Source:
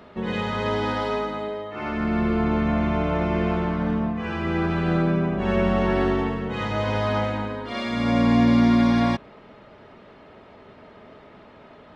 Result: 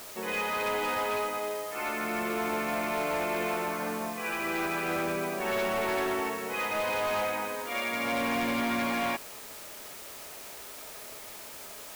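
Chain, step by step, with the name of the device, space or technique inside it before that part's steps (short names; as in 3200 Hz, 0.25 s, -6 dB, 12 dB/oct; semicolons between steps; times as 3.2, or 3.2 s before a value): drive-through speaker (BPF 450–2900 Hz; bell 2400 Hz +10 dB 0.24 oct; hard clip -24.5 dBFS, distortion -13 dB; white noise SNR 13 dB); gain -1.5 dB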